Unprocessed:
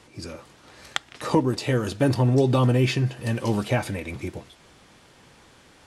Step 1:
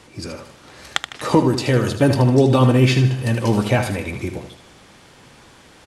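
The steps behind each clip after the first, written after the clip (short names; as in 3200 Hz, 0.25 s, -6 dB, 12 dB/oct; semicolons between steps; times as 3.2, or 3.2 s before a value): feedback echo 77 ms, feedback 42%, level -9 dB; gain +5.5 dB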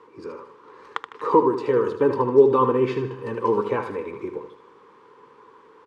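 double band-pass 670 Hz, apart 1.2 oct; gain +7 dB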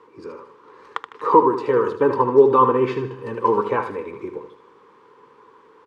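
dynamic EQ 1100 Hz, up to +6 dB, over -31 dBFS, Q 0.76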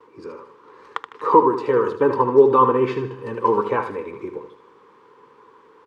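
gate with hold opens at -47 dBFS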